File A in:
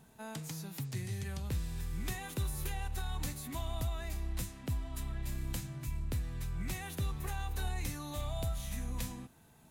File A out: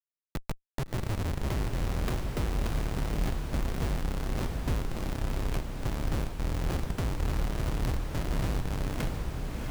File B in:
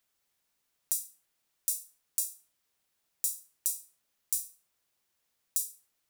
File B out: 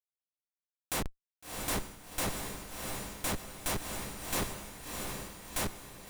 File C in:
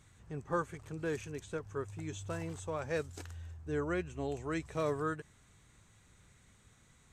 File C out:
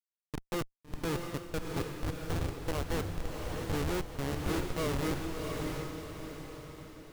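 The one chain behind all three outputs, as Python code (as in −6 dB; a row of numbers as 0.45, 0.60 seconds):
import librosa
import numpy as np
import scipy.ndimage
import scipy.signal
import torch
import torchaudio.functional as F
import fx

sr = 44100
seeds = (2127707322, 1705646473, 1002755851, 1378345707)

y = fx.dmg_buzz(x, sr, base_hz=50.0, harmonics=4, level_db=-68.0, tilt_db=-8, odd_only=False)
y = fx.schmitt(y, sr, flips_db=-33.5)
y = fx.echo_diffused(y, sr, ms=689, feedback_pct=47, wet_db=-3)
y = y * 10.0 ** (7.5 / 20.0)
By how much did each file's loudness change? +6.0, −3.5, +2.0 LU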